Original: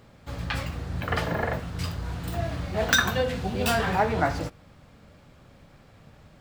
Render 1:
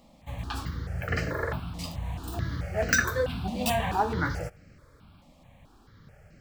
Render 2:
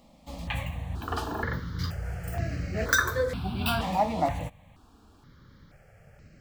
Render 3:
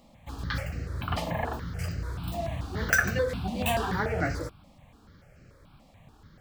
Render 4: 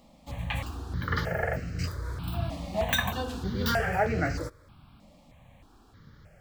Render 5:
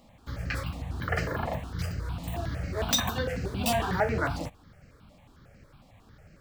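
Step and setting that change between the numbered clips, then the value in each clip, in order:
step phaser, rate: 4.6, 2.1, 6.9, 3.2, 11 Hz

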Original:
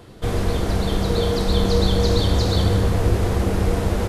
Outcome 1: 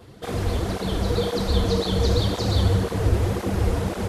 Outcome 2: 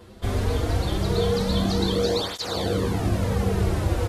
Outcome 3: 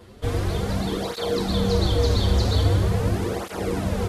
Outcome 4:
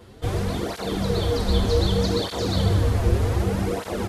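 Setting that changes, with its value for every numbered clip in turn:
tape flanging out of phase, nulls at: 1.9, 0.21, 0.43, 0.65 Hz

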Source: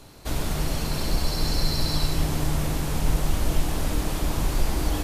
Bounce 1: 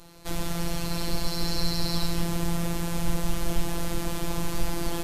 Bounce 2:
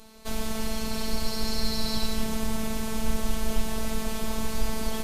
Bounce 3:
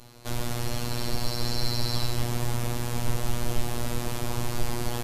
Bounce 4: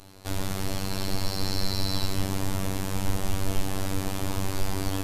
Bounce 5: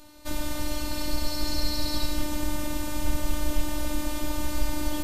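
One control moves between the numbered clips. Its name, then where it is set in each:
robotiser, frequency: 170, 220, 120, 96, 300 Hz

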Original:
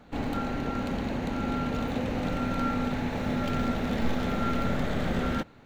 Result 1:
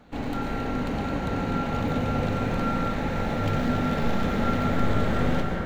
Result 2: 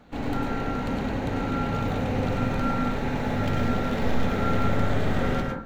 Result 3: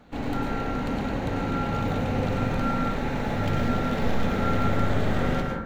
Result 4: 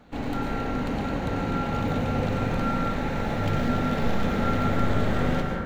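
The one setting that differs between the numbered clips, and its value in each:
plate-style reverb, RT60: 5.2, 0.55, 1.1, 2.4 s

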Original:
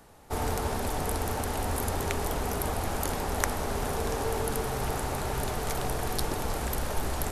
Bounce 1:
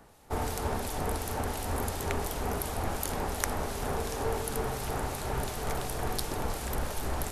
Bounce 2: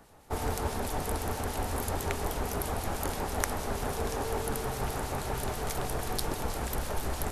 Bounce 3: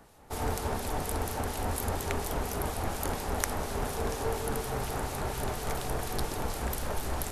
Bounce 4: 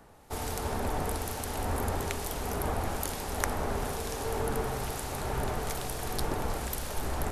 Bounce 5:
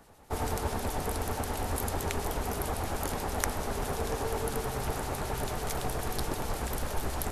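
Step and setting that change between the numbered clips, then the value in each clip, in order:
harmonic tremolo, rate: 2.8, 6.2, 4.2, 1.1, 9.2 Hz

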